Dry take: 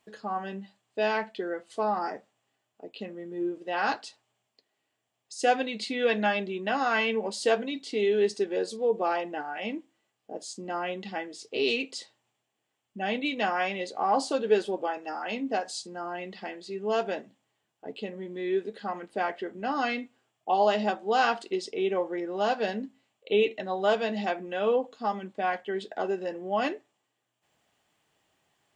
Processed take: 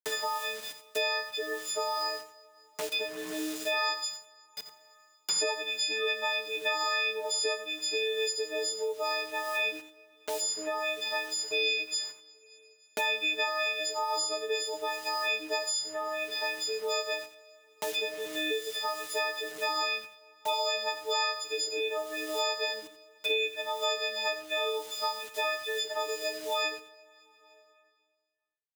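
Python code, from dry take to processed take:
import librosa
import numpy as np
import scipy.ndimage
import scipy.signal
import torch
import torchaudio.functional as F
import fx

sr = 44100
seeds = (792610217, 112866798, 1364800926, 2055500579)

y = fx.freq_snap(x, sr, grid_st=6)
y = scipy.signal.sosfilt(scipy.signal.cheby1(4, 1.0, [360.0, 8900.0], 'bandpass', fs=sr, output='sos'), y)
y = fx.high_shelf(y, sr, hz=4600.0, db=11.0)
y = fx.quant_dither(y, sr, seeds[0], bits=8, dither='none')
y = y + 10.0 ** (-13.5 / 20.0) * np.pad(y, (int(87 * sr / 1000.0), 0))[:len(y)]
y = fx.rev_double_slope(y, sr, seeds[1], early_s=0.48, late_s=1.6, knee_db=-17, drr_db=13.5)
y = fx.band_squash(y, sr, depth_pct=100)
y = F.gain(torch.from_numpy(y), -7.0).numpy()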